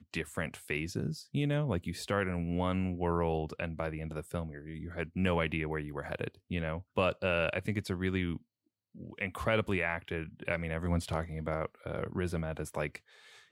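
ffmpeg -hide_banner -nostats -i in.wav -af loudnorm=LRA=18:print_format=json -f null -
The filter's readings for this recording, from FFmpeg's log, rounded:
"input_i" : "-34.8",
"input_tp" : "-14.5",
"input_lra" : "3.3",
"input_thresh" : "-45.1",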